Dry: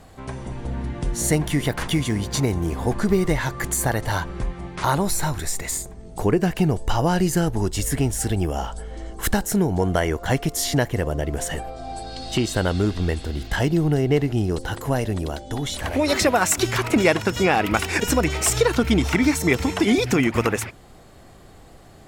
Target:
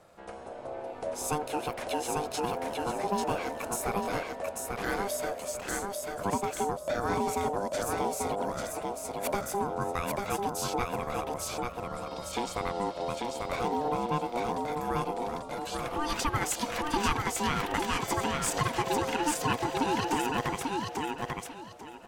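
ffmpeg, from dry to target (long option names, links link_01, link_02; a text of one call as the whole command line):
ffmpeg -i in.wav -af "aeval=exprs='val(0)*sin(2*PI*600*n/s)':channel_layout=same,aecho=1:1:842|1684|2526:0.708|0.17|0.0408,volume=-8.5dB" out.wav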